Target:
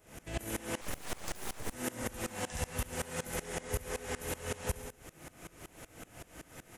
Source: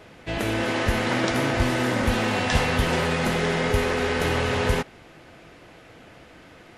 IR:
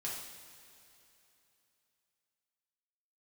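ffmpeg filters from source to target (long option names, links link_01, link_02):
-filter_complex "[0:a]lowshelf=frequency=79:gain=8,acompressor=threshold=-33dB:ratio=4,aexciter=amount=7.1:drive=4.6:freq=6200,aecho=1:1:69|138|207|276|345:0.596|0.256|0.11|0.0474|0.0204,asettb=1/sr,asplit=3[link_01][link_02][link_03];[link_01]atrim=end=0.814[link_04];[link_02]atrim=start=0.81:end=1.73,asetpts=PTS-STARTPTS,afade=type=in:duration=0.004:curve=qsin,afade=type=out:start_time=0.916:duration=0.004:curve=qsin,aeval=exprs='abs(val(0))':channel_layout=same[link_05];[link_03]atrim=start=1.726[link_06];[link_04][link_05]acrossfade=duration=0.004:curve1=hsin:curve2=qsin[link_07];[link_07][link_06]acrossfade=duration=0.004:curve1=qsin:curve2=hsin,aeval=exprs='val(0)*pow(10,-22*if(lt(mod(-5.3*n/s,1),2*abs(-5.3)/1000),1-mod(-5.3*n/s,1)/(2*abs(-5.3)/1000),(mod(-5.3*n/s,1)-2*abs(-5.3)/1000)/(1-2*abs(-5.3)/1000))/20)':channel_layout=same"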